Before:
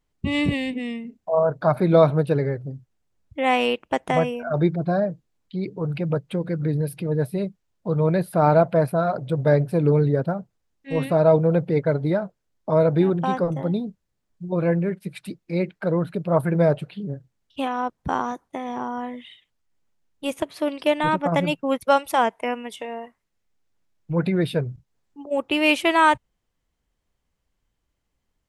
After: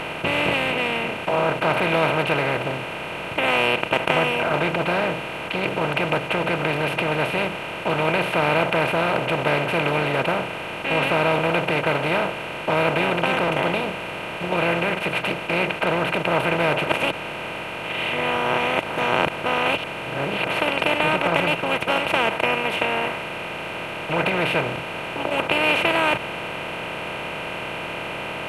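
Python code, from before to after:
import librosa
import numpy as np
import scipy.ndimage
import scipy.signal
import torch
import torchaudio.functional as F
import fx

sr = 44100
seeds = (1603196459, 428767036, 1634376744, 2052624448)

y = fx.edit(x, sr, fx.reverse_span(start_s=16.87, length_s=3.6), tone=tone)
y = fx.bin_compress(y, sr, power=0.2)
y = fx.peak_eq(y, sr, hz=2500.0, db=8.5, octaves=1.1)
y = F.gain(torch.from_numpy(y), -12.0).numpy()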